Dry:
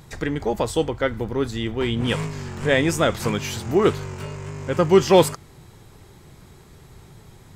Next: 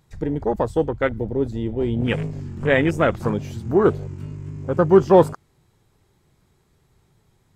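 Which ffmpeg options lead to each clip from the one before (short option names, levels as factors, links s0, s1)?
-af "afwtdn=0.0501,volume=1.19"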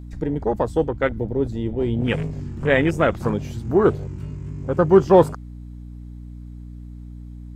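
-af "aeval=exprs='val(0)+0.0178*(sin(2*PI*60*n/s)+sin(2*PI*2*60*n/s)/2+sin(2*PI*3*60*n/s)/3+sin(2*PI*4*60*n/s)/4+sin(2*PI*5*60*n/s)/5)':c=same"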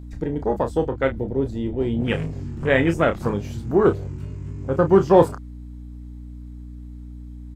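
-filter_complex "[0:a]asplit=2[s0][s1];[s1]adelay=30,volume=0.398[s2];[s0][s2]amix=inputs=2:normalize=0,volume=0.891"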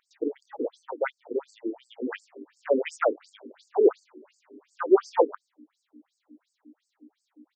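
-af "afftfilt=real='re*between(b*sr/1024,330*pow(6400/330,0.5+0.5*sin(2*PI*2.8*pts/sr))/1.41,330*pow(6400/330,0.5+0.5*sin(2*PI*2.8*pts/sr))*1.41)':imag='im*between(b*sr/1024,330*pow(6400/330,0.5+0.5*sin(2*PI*2.8*pts/sr))/1.41,330*pow(6400/330,0.5+0.5*sin(2*PI*2.8*pts/sr))*1.41)':win_size=1024:overlap=0.75"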